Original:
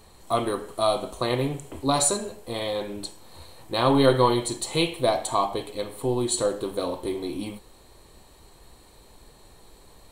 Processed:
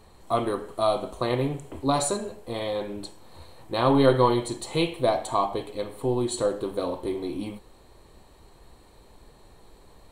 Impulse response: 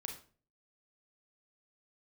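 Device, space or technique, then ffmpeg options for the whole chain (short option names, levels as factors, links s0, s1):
behind a face mask: -af "highshelf=f=3200:g=-8"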